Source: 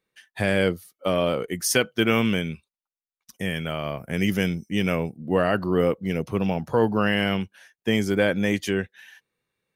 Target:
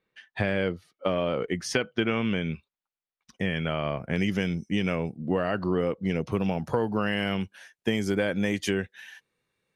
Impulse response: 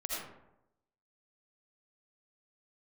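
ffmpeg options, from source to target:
-af "asetnsamples=n=441:p=0,asendcmd='4.16 lowpass f 6100;6.32 lowpass f 11000',lowpass=3.5k,acompressor=threshold=-24dB:ratio=6,volume=2dB"

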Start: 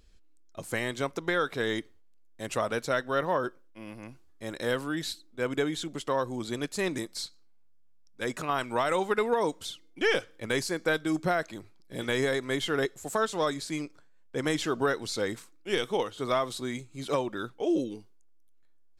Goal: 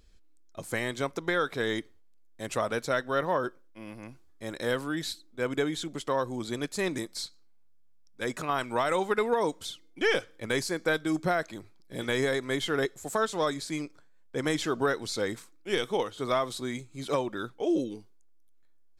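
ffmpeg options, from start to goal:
-af "bandreject=f=2.8k:w=18"

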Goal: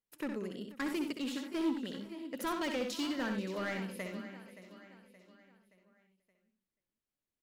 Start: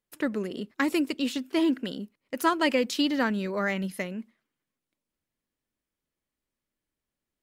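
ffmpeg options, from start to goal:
-filter_complex "[0:a]asplit=2[a][b];[b]aecho=0:1:573|1146|1719|2292:0.178|0.0818|0.0376|0.0173[c];[a][c]amix=inputs=2:normalize=0,asoftclip=type=hard:threshold=-22.5dB,asplit=2[d][e];[e]aecho=0:1:64|92|484:0.473|0.299|0.112[f];[d][f]amix=inputs=2:normalize=0,volume=-9dB"

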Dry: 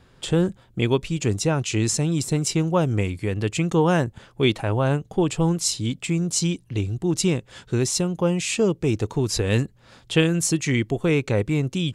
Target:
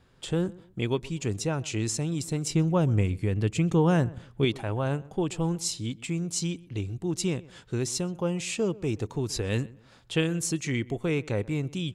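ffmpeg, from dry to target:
-filter_complex "[0:a]asettb=1/sr,asplit=3[a][b][c];[a]atrim=end=2.494[d];[b]atrim=start=2.49:end=4.45,asetpts=PTS-STARTPTS,afade=t=in:d=0.004:c=qsin,afade=t=out:st=1.956:d=0.004:c=qsin,lowshelf=f=280:g=8[e];[c]atrim=start=4.446[f];[d][e]acrossfade=d=0.004:c1=hsin:c2=qsin[g];[g][f]acrossfade=d=0.004:c1=qsin:c2=hsin,asplit=2[h][i];[i]adelay=126,lowpass=f=1.9k:p=1,volume=-20.5dB,asplit=2[j][k];[k]adelay=126,lowpass=f=1.9k:p=1,volume=0.32[l];[j][l]amix=inputs=2:normalize=0[m];[h][m]amix=inputs=2:normalize=0,volume=-7dB"

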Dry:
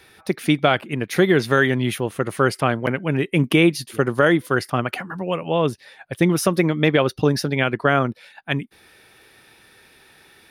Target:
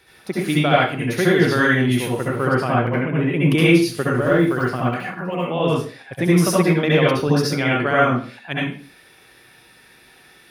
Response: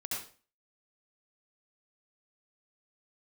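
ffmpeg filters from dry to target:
-filter_complex "[0:a]asettb=1/sr,asplit=3[a][b][c];[a]atrim=end=2.264[d];[b]atrim=start=2.26:end=3.43,asetpts=PTS-STARTPTS,afade=t=in:d=0.004:c=qsin,afade=t=out:st=1.166:d=0.004:c=qsin,equalizer=f=7.9k:w=0.56:g=-12.5[e];[c]atrim=start=3.426[f];[d][e]acrossfade=d=0.004:c1=hsin:c2=qsin[g];[g][f]acrossfade=d=0.004:c1=qsin:c2=hsin,asettb=1/sr,asplit=3[h][i][j];[h]atrim=end=4.034[k];[i]atrim=start=4.03:end=5.44,asetpts=PTS-STARTPTS,afade=t=in:d=0.004:c=qsin,afade=t=out:st=1.406:d=0.004:c=qsin,deesser=0.95[l];[j]atrim=start=5.436[m];[k][l]acrossfade=d=0.004:c1=hsin:c2=qsin[n];[n][m]acrossfade=d=0.004:c1=qsin:c2=hsin[o];[1:a]atrim=start_sample=2205[p];[o][p]afir=irnorm=-1:irlink=0"

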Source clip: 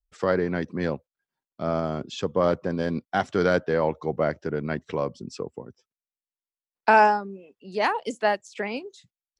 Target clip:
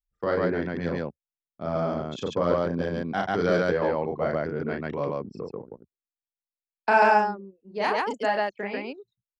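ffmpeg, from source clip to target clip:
-af "anlmdn=3.98,aecho=1:1:34.99|139.9:0.708|1,volume=-4.5dB"

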